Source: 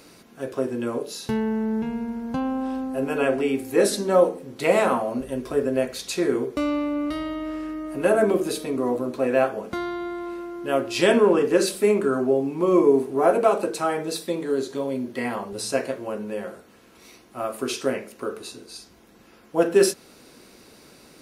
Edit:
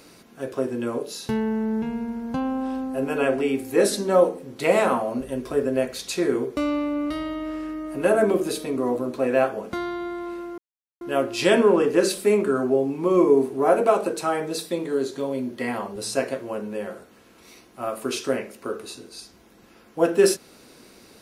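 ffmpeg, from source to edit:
-filter_complex "[0:a]asplit=2[a][b];[a]atrim=end=10.58,asetpts=PTS-STARTPTS,afade=t=out:st=10.576:d=0.004:c=hsin,apad=pad_dur=0.43[c];[b]atrim=start=10.58,asetpts=PTS-STARTPTS,afade=t=in:d=0.004:c=hsin[d];[c][d]concat=n=2:v=0:a=1"

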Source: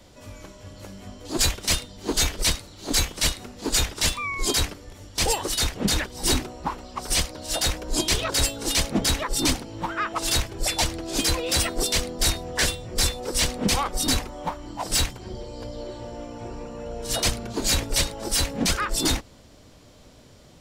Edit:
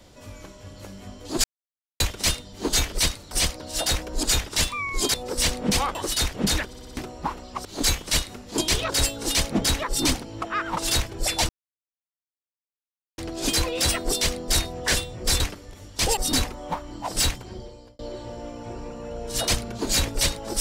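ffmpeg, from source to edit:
-filter_complex "[0:a]asplit=19[a][b][c][d][e][f][g][h][i][j][k][l][m][n][o][p][q][r][s];[a]atrim=end=1.44,asetpts=PTS-STARTPTS,afade=t=out:st=1.436:d=0.004:c=hsin,apad=pad_dur=0.56[t];[b]atrim=start=1.44:end=2.752,asetpts=PTS-STARTPTS,afade=t=in:d=0.004:c=hsin[u];[c]atrim=start=7.058:end=7.982[v];[d]atrim=start=3.678:end=4.592[w];[e]atrim=start=13.108:end=13.922[x];[f]atrim=start=5.358:end=6.142[y];[g]atrim=start=6.078:end=6.142[z];[h]atrim=start=6.078:end=6.142[aa];[i]atrim=start=6.078:end=6.142[ab];[j]atrim=start=6.078:end=6.142[ac];[k]atrim=start=6.378:end=7.062[ad];[l]atrim=start=2.748:end=3.682[ae];[m]atrim=start=7.978:end=9.822[af];[n]atrim=start=9.818:end=10.172,asetpts=PTS-STARTPTS,areverse[ag];[o]atrim=start=10.168:end=10.89,asetpts=PTS-STARTPTS,afade=t=out:st=0.718:d=0.004:c=hsin,apad=pad_dur=1.69[ah];[p]atrim=start=10.89:end=13.112,asetpts=PTS-STARTPTS,afade=t=in:d=0.004:c=hsin[ai];[q]atrim=start=4.588:end=5.362[aj];[r]atrim=start=13.918:end=15.74,asetpts=PTS-STARTPTS,afade=t=out:st=1.282:d=0.54[ak];[s]atrim=start=15.74,asetpts=PTS-STARTPTS,afade=t=in:d=0.004:c=hsin[al];[t][u]concat=n=2:v=0:a=1[am];[am][v]acrossfade=d=0.004:c1=hsin:c2=hsin[an];[an][w]acrossfade=d=0.004:c1=hsin:c2=hsin[ao];[ao][x]acrossfade=d=0.004:c1=hsin:c2=hsin[ap];[ap][y]acrossfade=d=0.004:c1=hsin:c2=hsin[aq];[aq][z]acrossfade=d=0.004:c1=hsin:c2=hsin[ar];[ar][aa]acrossfade=d=0.004:c1=hsin:c2=hsin[as];[as][ab]acrossfade=d=0.004:c1=hsin:c2=hsin[at];[at][ac]acrossfade=d=0.004:c1=hsin:c2=hsin[au];[au][ad]acrossfade=d=0.004:c1=hsin:c2=hsin[av];[av][ae]acrossfade=d=0.004:c1=hsin:c2=hsin[aw];[aw][af]acrossfade=d=0.004:c1=hsin:c2=hsin[ax];[ax][ag]acrossfade=d=0.004:c1=hsin:c2=hsin[ay];[ah][ai]concat=n=2:v=0:a=1[az];[ay][az]acrossfade=d=0.004:c1=hsin:c2=hsin[ba];[ba][aj]acrossfade=d=0.004:c1=hsin:c2=hsin[bb];[ak][al]concat=n=2:v=0:a=1[bc];[bb][bc]acrossfade=d=0.004:c1=hsin:c2=hsin"

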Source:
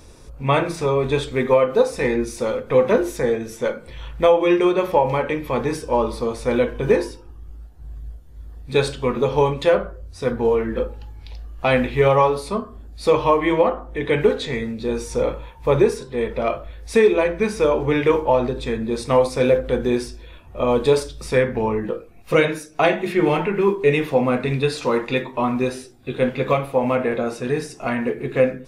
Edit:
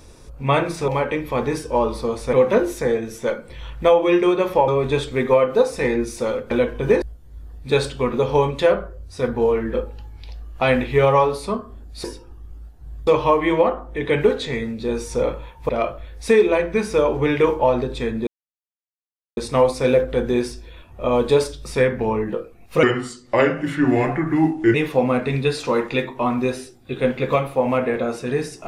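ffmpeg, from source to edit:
-filter_complex "[0:a]asplit=12[a][b][c][d][e][f][g][h][i][j][k][l];[a]atrim=end=0.882[m];[b]atrim=start=5.058:end=6.512[n];[c]atrim=start=2.708:end=5.062[o];[d]atrim=start=0.878:end=2.712[p];[e]atrim=start=6.508:end=7.022[q];[f]atrim=start=8.048:end=13.072[r];[g]atrim=start=7.018:end=8.052[s];[h]atrim=start=13.068:end=15.692[t];[i]atrim=start=16.348:end=18.93,asetpts=PTS-STARTPTS,afade=t=out:st=2.578:d=0.004:c=hsin,apad=pad_dur=1.1[u];[j]atrim=start=18.93:end=22.394,asetpts=PTS-STARTPTS,afade=t=in:d=0.004:c=hsin[v];[k]atrim=start=22.39:end=23.92,asetpts=PTS-STARTPTS,asetrate=35280,aresample=44100,atrim=end_sample=84341,asetpts=PTS-STARTPTS[w];[l]atrim=start=23.916[x];[m][n]acrossfade=d=0.004:c1=hsin:c2=hsin[y];[y][o]acrossfade=d=0.004:c1=hsin:c2=hsin[z];[z][p]acrossfade=d=0.004:c1=hsin:c2=hsin[aa];[aa][q]acrossfade=d=0.004:c1=hsin:c2=hsin[ab];[ab][r]acrossfade=d=0.004:c1=hsin:c2=hsin[ac];[ac][s]acrossfade=d=0.004:c1=hsin:c2=hsin[ad];[ad][t]acrossfade=d=0.004:c1=hsin:c2=hsin[ae];[u][v]concat=n=2:v=0:a=1[af];[ae][af]acrossfade=d=0.004:c1=hsin:c2=hsin[ag];[ag][w]acrossfade=d=0.004:c1=hsin:c2=hsin[ah];[ah][x]acrossfade=d=0.004:c1=hsin:c2=hsin"

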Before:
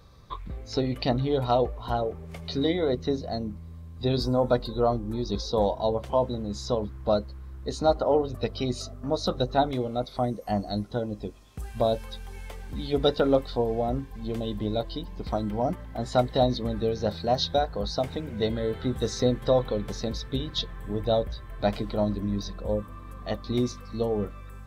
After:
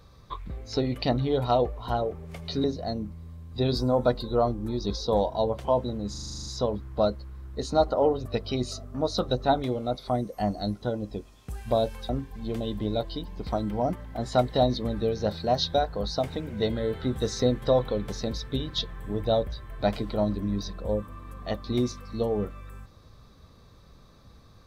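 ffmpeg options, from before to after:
-filter_complex "[0:a]asplit=12[a][b][c][d][e][f][g][h][i][j][k][l];[a]atrim=end=2.642[m];[b]atrim=start=3.088:end=6.592[n];[c]atrim=start=6.548:end=6.592[o];[d]atrim=start=6.548:end=6.592[p];[e]atrim=start=6.548:end=6.592[q];[f]atrim=start=6.548:end=6.592[r];[g]atrim=start=6.548:end=6.592[s];[h]atrim=start=6.548:end=6.592[t];[i]atrim=start=6.548:end=6.592[u];[j]atrim=start=6.548:end=6.592[v];[k]atrim=start=6.548:end=12.182[w];[l]atrim=start=13.888[x];[m][n]acrossfade=d=0.004:c1=hsin:c2=hsin[y];[y][o]acrossfade=d=0.004:c1=hsin:c2=hsin[z];[z][p]acrossfade=d=0.004:c1=hsin:c2=hsin[aa];[aa][q]acrossfade=d=0.004:c1=hsin:c2=hsin[ab];[ab][r]acrossfade=d=0.004:c1=hsin:c2=hsin[ac];[ac][s]acrossfade=d=0.004:c1=hsin:c2=hsin[ad];[ad][t]acrossfade=d=0.004:c1=hsin:c2=hsin[ae];[ae][u]acrossfade=d=0.004:c1=hsin:c2=hsin[af];[af][v]acrossfade=d=0.004:c1=hsin:c2=hsin[ag];[ag][w]acrossfade=d=0.004:c1=hsin:c2=hsin[ah];[ah][x]acrossfade=d=0.004:c1=hsin:c2=hsin"

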